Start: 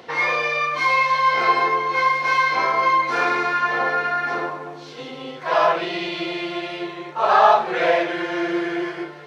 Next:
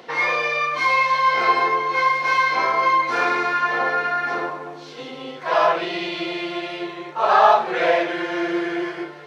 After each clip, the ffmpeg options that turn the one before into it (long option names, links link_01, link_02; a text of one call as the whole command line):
ffmpeg -i in.wav -af "highpass=140" out.wav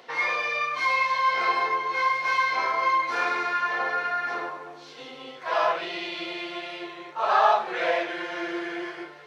ffmpeg -i in.wav -af "lowshelf=frequency=410:gain=-9,flanger=delay=7.1:depth=2.6:regen=-74:speed=1.2:shape=triangular" out.wav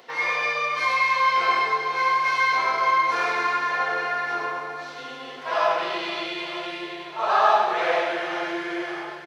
ffmpeg -i in.wav -filter_complex "[0:a]crystalizer=i=0.5:c=0,asplit=2[link_01][link_02];[link_02]aecho=0:1:100|260|516|925.6|1581:0.631|0.398|0.251|0.158|0.1[link_03];[link_01][link_03]amix=inputs=2:normalize=0" out.wav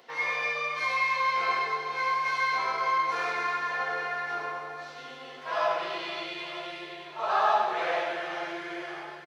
ffmpeg -i in.wav -filter_complex "[0:a]asplit=2[link_01][link_02];[link_02]adelay=13,volume=-8.5dB[link_03];[link_01][link_03]amix=inputs=2:normalize=0,volume=-6.5dB" out.wav